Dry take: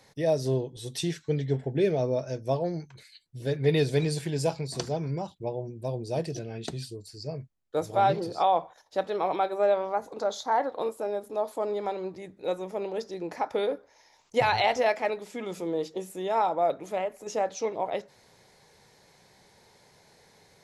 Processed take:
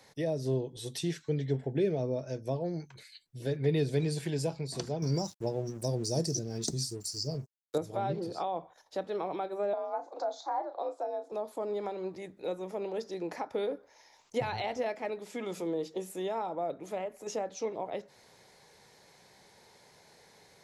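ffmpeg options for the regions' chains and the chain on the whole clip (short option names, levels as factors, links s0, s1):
-filter_complex "[0:a]asettb=1/sr,asplit=3[s0][s1][s2];[s0]atrim=end=5.024[s3];[s1]atrim=start=5.02:end=7.78,asetpts=PTS-STARTPTS,afade=t=in:d=0.004:c=qsin,afade=t=out:st=2.756:d=0.004:c=qsin,highshelf=f=4000:t=q:w=3:g=13,aeval=exprs='sgn(val(0))*max(abs(val(0))-0.00211,0)':c=same,acontrast=35[s4];[s2]atrim=start=7.776[s5];[s3][s4]acrossfade=d=0.004:c1=hsin:c2=qsin[s6];[s6][s5]acrossfade=d=0.004:c1=qsin:c2=hsin,asettb=1/sr,asplit=3[s7][s8][s9];[s7]atrim=end=9.734[s10];[s8]atrim=start=9.73:end=11.32,asetpts=PTS-STARTPTS,afade=t=in:d=0.004:c=qsin,afade=t=out:st=1.586:d=0.004:c=qsin,afreqshift=59,highpass=400,equalizer=f=740:t=q:w=4:g=10,equalizer=f=1900:t=q:w=4:g=-4,equalizer=f=2800:t=q:w=4:g=-9,lowpass=f=6600:w=0.5412,lowpass=f=6600:w=1.3066,asplit=2[s11][s12];[s12]adelay=35,volume=0.266[s13];[s11][s13]amix=inputs=2:normalize=0,atrim=end_sample=70119[s14];[s9]atrim=start=11.316[s15];[s10][s14]acrossfade=d=0.004:c1=hsin:c2=qsin[s16];[s16][s15]acrossfade=d=0.004:c1=qsin:c2=hsin,lowshelf=f=160:g=-6,acrossover=split=380[s17][s18];[s18]acompressor=threshold=0.0126:ratio=3[s19];[s17][s19]amix=inputs=2:normalize=0"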